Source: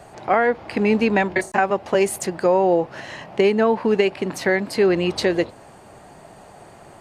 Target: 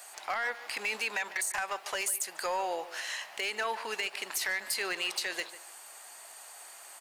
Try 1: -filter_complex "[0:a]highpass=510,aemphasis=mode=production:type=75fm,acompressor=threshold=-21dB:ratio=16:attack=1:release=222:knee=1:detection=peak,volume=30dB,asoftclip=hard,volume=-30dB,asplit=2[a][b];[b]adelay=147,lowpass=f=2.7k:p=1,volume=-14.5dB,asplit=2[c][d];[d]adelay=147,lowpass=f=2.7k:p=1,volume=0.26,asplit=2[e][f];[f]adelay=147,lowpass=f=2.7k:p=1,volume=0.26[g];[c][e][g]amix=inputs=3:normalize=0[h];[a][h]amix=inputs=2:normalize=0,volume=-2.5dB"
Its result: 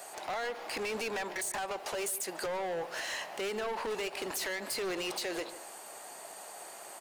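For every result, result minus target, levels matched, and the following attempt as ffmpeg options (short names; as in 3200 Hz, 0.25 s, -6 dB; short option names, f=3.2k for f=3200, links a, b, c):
500 Hz band +7.0 dB; overloaded stage: distortion +9 dB
-filter_complex "[0:a]highpass=1.2k,aemphasis=mode=production:type=75fm,acompressor=threshold=-21dB:ratio=16:attack=1:release=222:knee=1:detection=peak,volume=30dB,asoftclip=hard,volume=-30dB,asplit=2[a][b];[b]adelay=147,lowpass=f=2.7k:p=1,volume=-14.5dB,asplit=2[c][d];[d]adelay=147,lowpass=f=2.7k:p=1,volume=0.26,asplit=2[e][f];[f]adelay=147,lowpass=f=2.7k:p=1,volume=0.26[g];[c][e][g]amix=inputs=3:normalize=0[h];[a][h]amix=inputs=2:normalize=0,volume=-2.5dB"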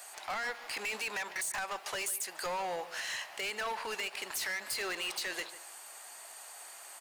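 overloaded stage: distortion +9 dB
-filter_complex "[0:a]highpass=1.2k,aemphasis=mode=production:type=75fm,acompressor=threshold=-21dB:ratio=16:attack=1:release=222:knee=1:detection=peak,volume=23dB,asoftclip=hard,volume=-23dB,asplit=2[a][b];[b]adelay=147,lowpass=f=2.7k:p=1,volume=-14.5dB,asplit=2[c][d];[d]adelay=147,lowpass=f=2.7k:p=1,volume=0.26,asplit=2[e][f];[f]adelay=147,lowpass=f=2.7k:p=1,volume=0.26[g];[c][e][g]amix=inputs=3:normalize=0[h];[a][h]amix=inputs=2:normalize=0,volume=-2.5dB"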